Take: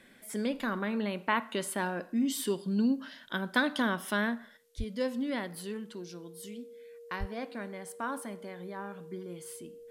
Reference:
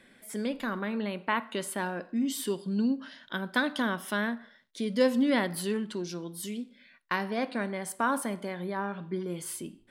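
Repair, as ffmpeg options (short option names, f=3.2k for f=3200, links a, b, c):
-filter_complex "[0:a]bandreject=f=470:w=30,asplit=3[a][b][c];[a]afade=t=out:st=4.77:d=0.02[d];[b]highpass=f=140:w=0.5412,highpass=f=140:w=1.3066,afade=t=in:st=4.77:d=0.02,afade=t=out:st=4.89:d=0.02[e];[c]afade=t=in:st=4.89:d=0.02[f];[d][e][f]amix=inputs=3:normalize=0,asplit=3[g][h][i];[g]afade=t=out:st=7.19:d=0.02[j];[h]highpass=f=140:w=0.5412,highpass=f=140:w=1.3066,afade=t=in:st=7.19:d=0.02,afade=t=out:st=7.31:d=0.02[k];[i]afade=t=in:st=7.31:d=0.02[l];[j][k][l]amix=inputs=3:normalize=0,agate=range=-21dB:threshold=-42dB,asetnsamples=n=441:p=0,asendcmd='4.57 volume volume 8dB',volume=0dB"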